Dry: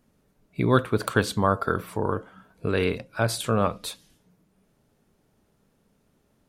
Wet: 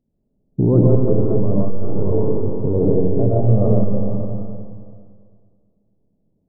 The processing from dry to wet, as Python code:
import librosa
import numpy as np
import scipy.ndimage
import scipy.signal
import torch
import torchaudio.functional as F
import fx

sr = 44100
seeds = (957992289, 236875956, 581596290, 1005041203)

p1 = fx.leveller(x, sr, passes=3)
p2 = scipy.ndimage.gaussian_filter1d(p1, 15.0, mode='constant')
p3 = p2 + fx.echo_single(p2, sr, ms=581, db=-20.5, dry=0)
p4 = fx.rev_freeverb(p3, sr, rt60_s=2.0, hf_ratio=0.8, predelay_ms=85, drr_db=-6.0)
y = fx.transformer_sat(p4, sr, knee_hz=39.0)